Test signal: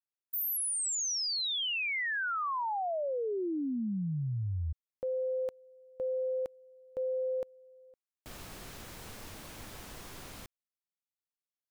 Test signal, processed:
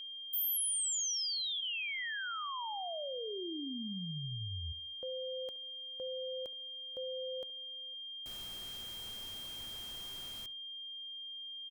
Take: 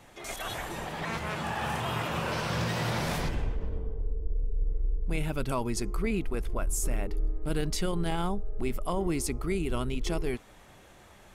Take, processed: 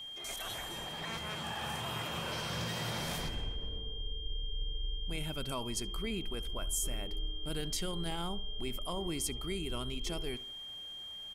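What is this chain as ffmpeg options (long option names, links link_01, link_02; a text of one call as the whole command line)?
ffmpeg -i in.wav -filter_complex "[0:a]highshelf=frequency=3600:gain=8,aeval=exprs='val(0)+0.02*sin(2*PI*3200*n/s)':channel_layout=same,asplit=2[link_01][link_02];[link_02]adelay=71,lowpass=frequency=1700:poles=1,volume=-17dB,asplit=2[link_03][link_04];[link_04]adelay=71,lowpass=frequency=1700:poles=1,volume=0.42,asplit=2[link_05][link_06];[link_06]adelay=71,lowpass=frequency=1700:poles=1,volume=0.42,asplit=2[link_07][link_08];[link_08]adelay=71,lowpass=frequency=1700:poles=1,volume=0.42[link_09];[link_01][link_03][link_05][link_07][link_09]amix=inputs=5:normalize=0,volume=-8.5dB" out.wav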